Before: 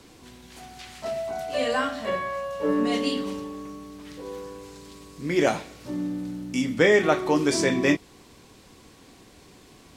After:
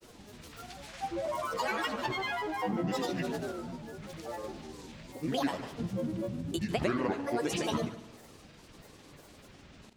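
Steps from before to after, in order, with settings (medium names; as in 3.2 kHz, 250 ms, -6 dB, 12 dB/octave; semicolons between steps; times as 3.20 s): compression 6:1, threshold -26 dBFS, peak gain reduction 11.5 dB; granulator, grains 20 per s, pitch spread up and down by 12 st; multi-head delay 73 ms, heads first and second, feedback 47%, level -17.5 dB; trim -1.5 dB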